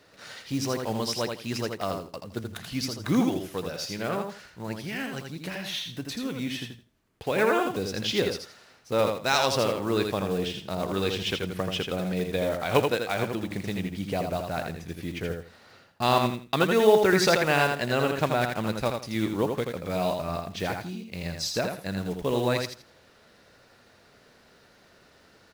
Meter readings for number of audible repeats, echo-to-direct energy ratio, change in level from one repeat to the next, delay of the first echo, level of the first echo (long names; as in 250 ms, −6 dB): 3, −5.0 dB, −13.0 dB, 82 ms, −5.0 dB